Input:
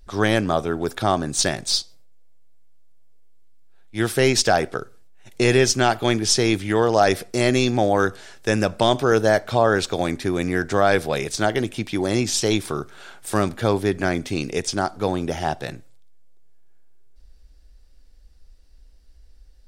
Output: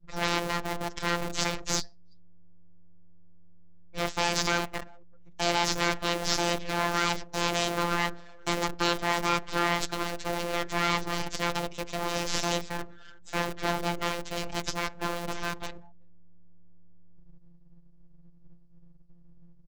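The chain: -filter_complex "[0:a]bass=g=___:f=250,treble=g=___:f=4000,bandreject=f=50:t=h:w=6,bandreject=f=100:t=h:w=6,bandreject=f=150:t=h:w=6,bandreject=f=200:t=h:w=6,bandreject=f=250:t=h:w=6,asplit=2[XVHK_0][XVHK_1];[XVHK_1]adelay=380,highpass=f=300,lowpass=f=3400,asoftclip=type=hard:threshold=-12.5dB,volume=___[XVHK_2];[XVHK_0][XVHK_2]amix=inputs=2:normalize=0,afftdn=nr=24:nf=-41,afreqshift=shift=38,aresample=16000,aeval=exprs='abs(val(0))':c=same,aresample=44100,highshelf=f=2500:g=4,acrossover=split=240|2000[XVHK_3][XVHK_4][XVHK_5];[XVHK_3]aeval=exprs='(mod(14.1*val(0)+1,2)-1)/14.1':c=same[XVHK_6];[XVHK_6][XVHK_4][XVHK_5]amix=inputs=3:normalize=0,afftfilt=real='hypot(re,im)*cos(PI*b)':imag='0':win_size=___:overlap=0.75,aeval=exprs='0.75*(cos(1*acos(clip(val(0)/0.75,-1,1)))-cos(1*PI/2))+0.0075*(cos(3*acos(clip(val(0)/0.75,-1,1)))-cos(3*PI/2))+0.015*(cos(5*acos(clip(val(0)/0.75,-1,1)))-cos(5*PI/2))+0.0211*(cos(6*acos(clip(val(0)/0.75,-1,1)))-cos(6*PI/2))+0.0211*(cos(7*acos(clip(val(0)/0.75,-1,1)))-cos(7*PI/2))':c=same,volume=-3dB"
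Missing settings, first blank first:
4, 0, -26dB, 1024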